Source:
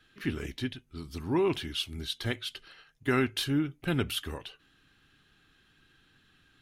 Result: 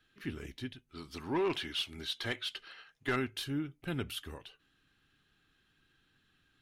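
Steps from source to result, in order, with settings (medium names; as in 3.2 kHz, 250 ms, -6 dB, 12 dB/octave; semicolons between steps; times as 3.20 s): 0.89–3.16 s: overdrive pedal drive 16 dB, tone 3.7 kHz, clips at -14.5 dBFS; trim -7.5 dB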